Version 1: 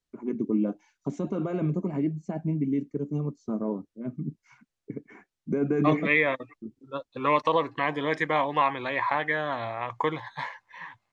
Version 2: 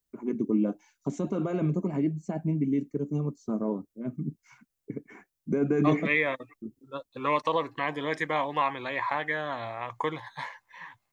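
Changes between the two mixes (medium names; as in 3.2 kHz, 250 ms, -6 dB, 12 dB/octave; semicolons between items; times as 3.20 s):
second voice -3.5 dB; master: remove distance through air 76 m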